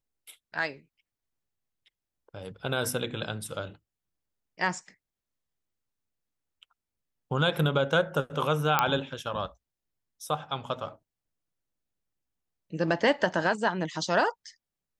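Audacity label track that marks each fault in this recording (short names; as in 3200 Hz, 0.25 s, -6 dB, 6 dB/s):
8.790000	8.790000	pop -7 dBFS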